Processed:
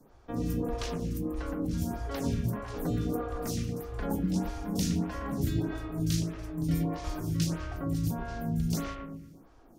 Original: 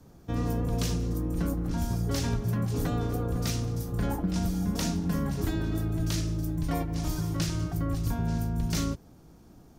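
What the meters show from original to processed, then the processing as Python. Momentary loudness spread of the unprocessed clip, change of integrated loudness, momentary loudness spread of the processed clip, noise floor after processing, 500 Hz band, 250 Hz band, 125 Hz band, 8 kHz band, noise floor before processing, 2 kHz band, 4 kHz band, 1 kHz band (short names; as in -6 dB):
2 LU, -2.5 dB, 5 LU, -56 dBFS, -0.5 dB, -1.0 dB, -3.5 dB, -3.5 dB, -53 dBFS, -2.5 dB, -4.0 dB, -1.5 dB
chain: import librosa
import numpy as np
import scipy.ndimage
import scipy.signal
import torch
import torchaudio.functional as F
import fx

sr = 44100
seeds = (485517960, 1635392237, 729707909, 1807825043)

p1 = x + fx.echo_bbd(x, sr, ms=116, stages=2048, feedback_pct=45, wet_db=-4.0, dry=0)
y = fx.stagger_phaser(p1, sr, hz=1.6)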